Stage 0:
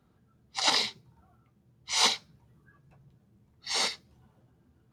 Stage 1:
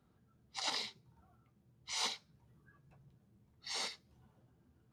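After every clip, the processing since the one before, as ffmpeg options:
ffmpeg -i in.wav -af "acompressor=threshold=-43dB:ratio=1.5,volume=-5dB" out.wav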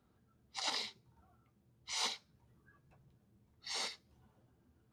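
ffmpeg -i in.wav -af "equalizer=frequency=150:width_type=o:width=0.49:gain=-5.5" out.wav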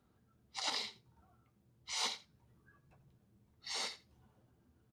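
ffmpeg -i in.wav -af "aecho=1:1:85:0.119" out.wav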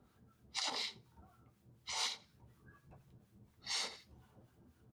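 ffmpeg -i in.wav -filter_complex "[0:a]acrossover=split=1100[link_01][link_02];[link_01]aeval=exprs='val(0)*(1-0.7/2+0.7/2*cos(2*PI*4.1*n/s))':channel_layout=same[link_03];[link_02]aeval=exprs='val(0)*(1-0.7/2-0.7/2*cos(2*PI*4.1*n/s))':channel_layout=same[link_04];[link_03][link_04]amix=inputs=2:normalize=0,acompressor=threshold=-45dB:ratio=3,volume=8dB" out.wav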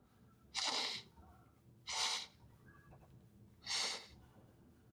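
ffmpeg -i in.wav -af "aecho=1:1:103:0.668,volume=-1dB" out.wav

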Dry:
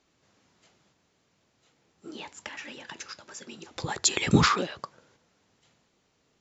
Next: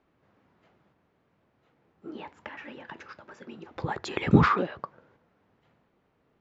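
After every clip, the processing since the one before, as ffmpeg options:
ffmpeg -i in.wav -af "lowpass=1700,volume=2dB" out.wav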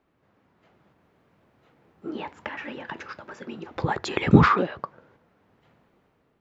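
ffmpeg -i in.wav -af "dynaudnorm=framelen=540:gausssize=3:maxgain=7dB" out.wav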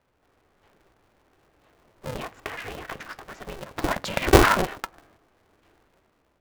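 ffmpeg -i in.wav -af "aeval=exprs='val(0)*sgn(sin(2*PI*190*n/s))':channel_layout=same" out.wav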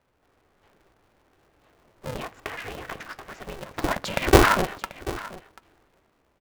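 ffmpeg -i in.wav -af "aecho=1:1:737:0.141" out.wav

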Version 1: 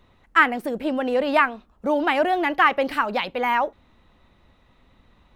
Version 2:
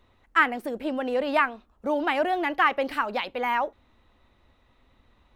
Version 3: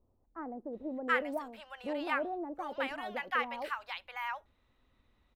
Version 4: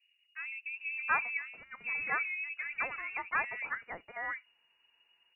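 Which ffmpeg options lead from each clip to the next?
ffmpeg -i in.wav -af "equalizer=frequency=170:width=4.3:gain=-10.5,volume=-4dB" out.wav
ffmpeg -i in.wav -filter_complex "[0:a]acrossover=split=830[link_01][link_02];[link_02]adelay=730[link_03];[link_01][link_03]amix=inputs=2:normalize=0,volume=-9dB" out.wav
ffmpeg -i in.wav -af "lowpass=frequency=2500:width_type=q:width=0.5098,lowpass=frequency=2500:width_type=q:width=0.6013,lowpass=frequency=2500:width_type=q:width=0.9,lowpass=frequency=2500:width_type=q:width=2.563,afreqshift=-2900" out.wav

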